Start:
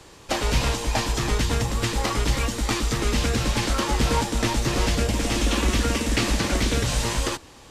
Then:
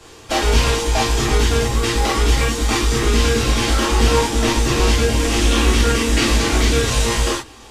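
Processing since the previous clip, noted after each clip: gated-style reverb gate 80 ms flat, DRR -5 dB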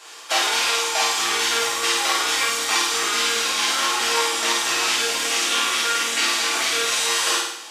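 high-pass 930 Hz 12 dB/octave; on a send: flutter echo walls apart 8.9 m, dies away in 0.73 s; on the sum: gain riding within 4 dB 0.5 s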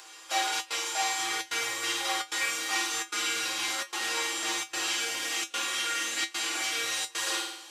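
trance gate "xxxxxx.xxxxxxx.x" 149 bpm -24 dB; feedback comb 110 Hz, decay 0.16 s, harmonics odd, mix 90%; upward compressor, threshold -45 dBFS

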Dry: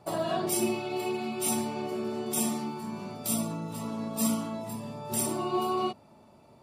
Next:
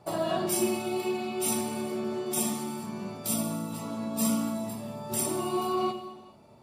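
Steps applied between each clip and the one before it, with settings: gated-style reverb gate 470 ms falling, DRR 7 dB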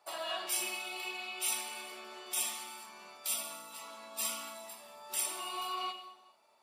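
high-pass 1 kHz 12 dB/octave; dynamic bell 2.8 kHz, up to +7 dB, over -54 dBFS, Q 1.2; trim -4 dB

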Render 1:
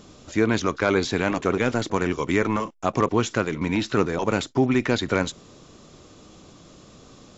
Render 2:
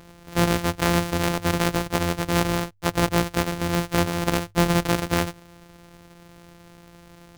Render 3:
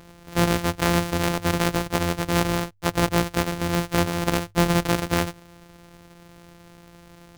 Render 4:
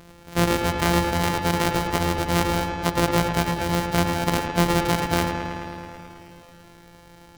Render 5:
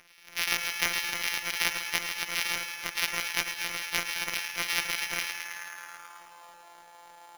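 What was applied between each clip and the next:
sorted samples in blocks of 256 samples; hum notches 50/100 Hz
no audible change
feedback echo behind a low-pass 108 ms, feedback 77%, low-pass 3.4 kHz, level -6 dB
high-pass sweep 2.3 kHz -> 810 Hz, 5.35–6.59 s; sample-rate reducer 8.1 kHz, jitter 0%; trim -4 dB

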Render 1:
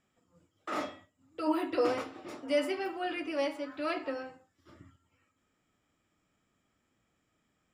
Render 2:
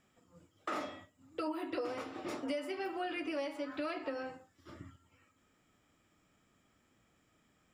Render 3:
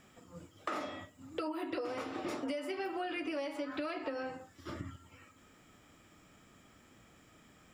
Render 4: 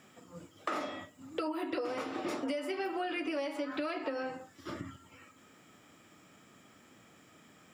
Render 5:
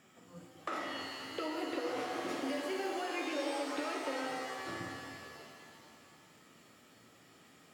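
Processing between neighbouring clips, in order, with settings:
compression 12:1, threshold -39 dBFS, peak gain reduction 16.5 dB; trim +4.5 dB
compression 3:1, threshold -49 dBFS, peak gain reduction 12 dB; trim +10.5 dB
high-pass 130 Hz 12 dB/octave; trim +2.5 dB
pitch-shifted reverb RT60 2.1 s, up +7 st, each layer -2 dB, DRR 2.5 dB; trim -4.5 dB

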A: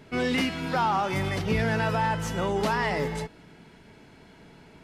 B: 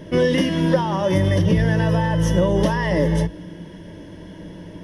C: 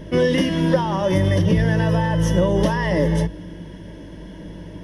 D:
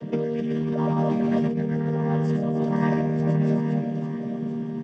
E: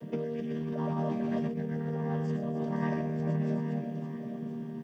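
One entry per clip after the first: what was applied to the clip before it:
rippled EQ curve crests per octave 1.2, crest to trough 13 dB; compression, threshold -26 dBFS, peak gain reduction 8 dB; resonant low shelf 700 Hz +7 dB, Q 1.5; trim +5.5 dB
hum 50 Hz, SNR 22 dB
vocoder on a held chord major triad, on D#3; reverse bouncing-ball echo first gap 120 ms, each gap 1.4×, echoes 5; compressor with a negative ratio -23 dBFS, ratio -1
bit crusher 11-bit; on a send at -15.5 dB: reverberation RT60 0.95 s, pre-delay 3 ms; on the sum: trim -8 dB

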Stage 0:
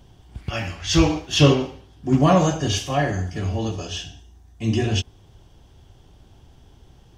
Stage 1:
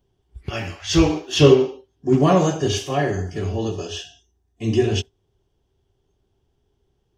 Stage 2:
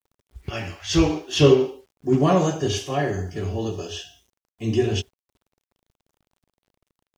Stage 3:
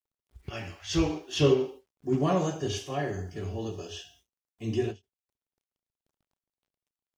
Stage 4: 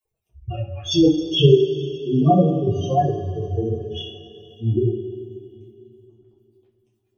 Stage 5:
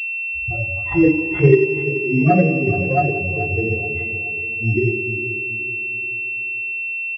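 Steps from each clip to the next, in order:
spectral noise reduction 18 dB; peaking EQ 400 Hz +12 dB 0.31 oct; trim -1 dB
word length cut 10-bit, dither none; trim -2.5 dB
endings held to a fixed fall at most 330 dB/s; trim -7.5 dB
spectral contrast enhancement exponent 3.9; two-slope reverb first 0.32 s, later 3.2 s, from -18 dB, DRR -6.5 dB; trim +5.5 dB
feedback delay 428 ms, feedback 41%, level -12 dB; class-D stage that switches slowly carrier 2.7 kHz; trim +1 dB

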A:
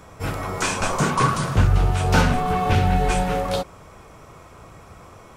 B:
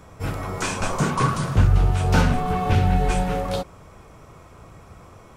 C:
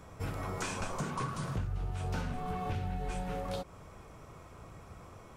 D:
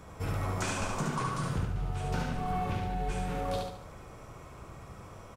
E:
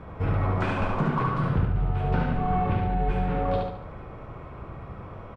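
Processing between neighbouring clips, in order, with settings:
bass shelf 330 Hz +4.5 dB; trim -3.5 dB
compression 5:1, threshold -28 dBFS, peak gain reduction 15 dB; trim -5.5 dB
feedback delay 72 ms, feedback 41%, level -3.5 dB; trim +2 dB
distance through air 450 m; trim +8.5 dB

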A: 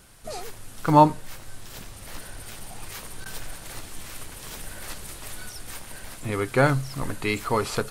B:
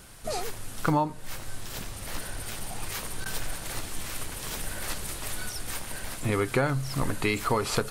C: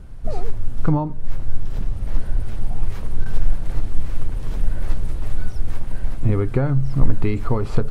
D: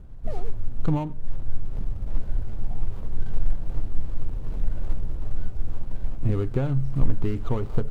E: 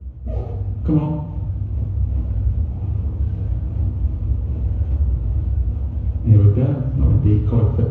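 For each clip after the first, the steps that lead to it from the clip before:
compression 10:1, threshold -25 dBFS, peak gain reduction 16.5 dB; trim +3.5 dB
tilt EQ -4.5 dB/octave; trim -3 dB
median filter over 25 samples; trim -5 dB
reverberation RT60 1.0 s, pre-delay 3 ms, DRR -13.5 dB; trim -16.5 dB

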